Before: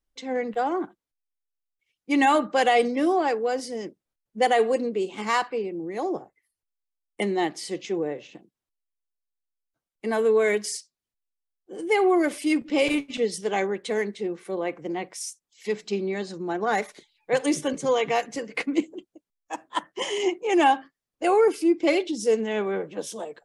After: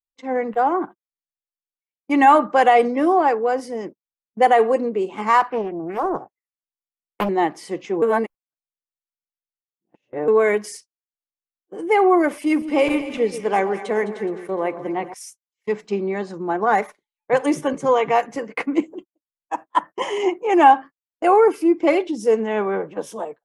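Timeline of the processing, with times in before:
5.4–7.29 Doppler distortion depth 0.7 ms
8.02–10.28 reverse
12.31–15.14 split-band echo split 1100 Hz, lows 0.13 s, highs 0.21 s, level -12 dB
whole clip: gate -39 dBFS, range -27 dB; graphic EQ 1000/4000/8000 Hz +7/-9/-7 dB; gain +3.5 dB

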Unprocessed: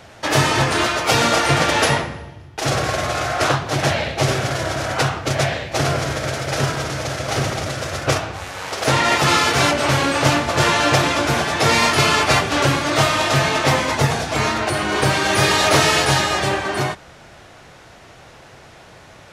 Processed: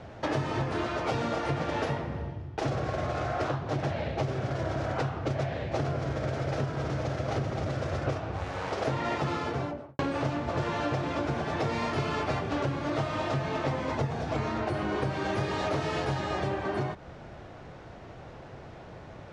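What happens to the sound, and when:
9.16–9.99 studio fade out
whole clip: LPF 5800 Hz 12 dB/oct; tilt shelf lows +7 dB, about 1200 Hz; compressor, threshold -22 dBFS; gain -5.5 dB

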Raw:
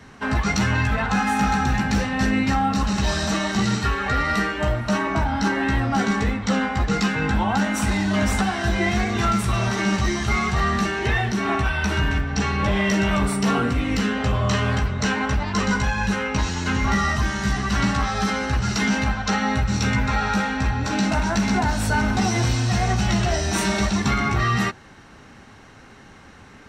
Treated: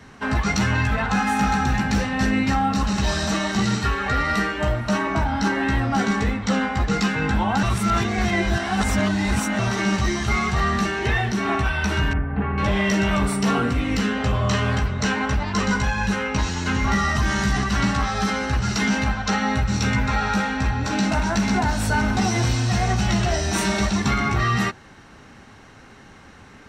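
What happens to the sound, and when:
7.63–9.59 reverse
12.13–12.58 Gaussian blur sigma 4.5 samples
17.15–17.64 fast leveller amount 50%

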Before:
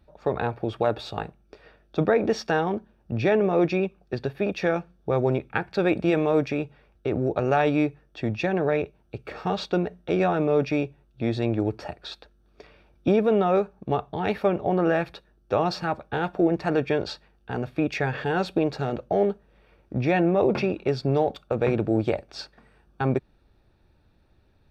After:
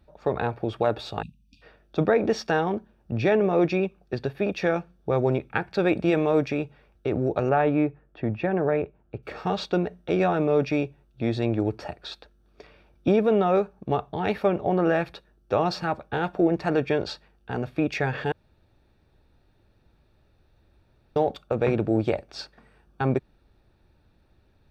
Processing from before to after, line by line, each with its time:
1.23–1.62 spectral delete 300–2400 Hz
7.49–9.23 LPF 1900 Hz
18.32–21.16 room tone

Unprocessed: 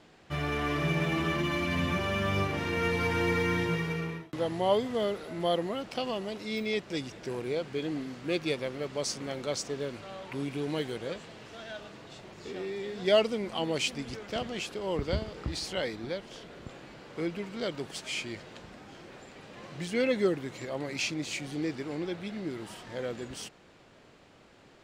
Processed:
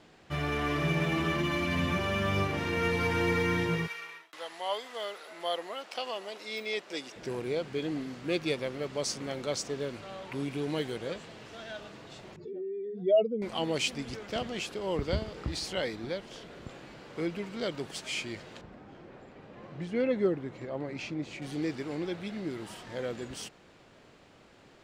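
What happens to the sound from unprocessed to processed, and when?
3.86–7.15 HPF 1300 Hz -> 390 Hz
12.36–13.42 spectral contrast raised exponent 2.3
18.61–21.42 LPF 1100 Hz 6 dB/oct

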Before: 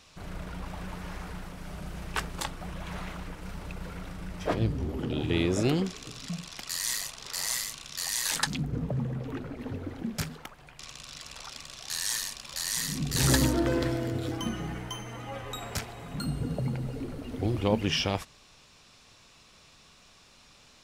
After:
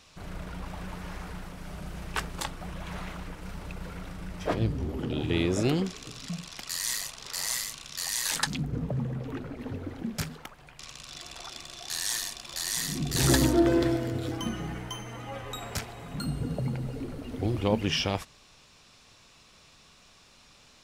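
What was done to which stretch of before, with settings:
11.1–13.96 small resonant body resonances 350/700/3500 Hz, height 12 dB -> 8 dB, ringing for 65 ms

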